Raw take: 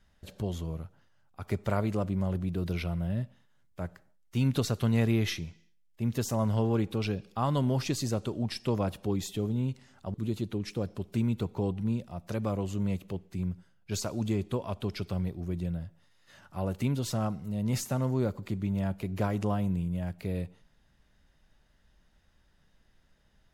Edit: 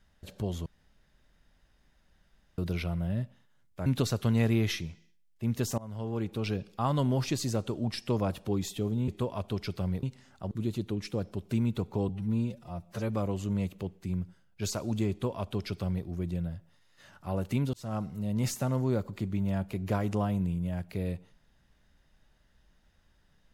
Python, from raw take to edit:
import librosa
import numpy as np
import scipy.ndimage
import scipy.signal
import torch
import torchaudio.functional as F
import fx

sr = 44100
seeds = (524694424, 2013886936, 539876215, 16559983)

y = fx.edit(x, sr, fx.room_tone_fill(start_s=0.66, length_s=1.92),
    fx.cut(start_s=3.86, length_s=0.58),
    fx.fade_in_from(start_s=6.36, length_s=0.79, floor_db=-21.0),
    fx.stretch_span(start_s=11.72, length_s=0.67, factor=1.5),
    fx.duplicate(start_s=14.4, length_s=0.95, to_s=9.66),
    fx.fade_in_span(start_s=17.03, length_s=0.3), tone=tone)